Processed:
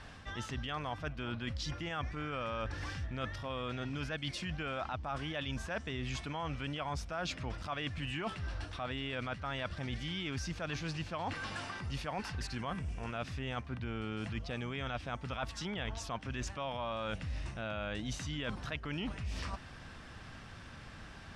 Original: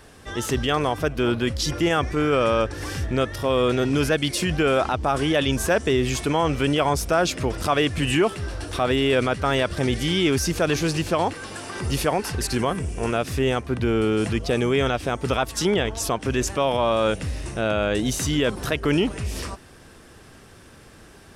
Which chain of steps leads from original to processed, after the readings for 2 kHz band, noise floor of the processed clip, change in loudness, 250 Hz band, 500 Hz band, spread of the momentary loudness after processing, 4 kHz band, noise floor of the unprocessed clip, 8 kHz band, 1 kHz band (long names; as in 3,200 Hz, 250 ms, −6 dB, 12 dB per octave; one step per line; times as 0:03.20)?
−13.5 dB, −50 dBFS, −16.5 dB, −18.0 dB, −21.0 dB, 3 LU, −14.0 dB, −48 dBFS, −19.5 dB, −15.0 dB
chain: low-pass filter 4,400 Hz 12 dB per octave
parametric band 400 Hz −12 dB 0.94 octaves
reversed playback
downward compressor 5 to 1, threshold −37 dBFS, peak gain reduction 16.5 dB
reversed playback